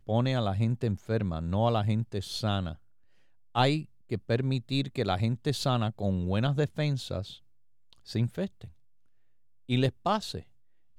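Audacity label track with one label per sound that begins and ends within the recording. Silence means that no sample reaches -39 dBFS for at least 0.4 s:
3.550000	7.350000	sound
7.930000	8.650000	sound
9.690000	10.400000	sound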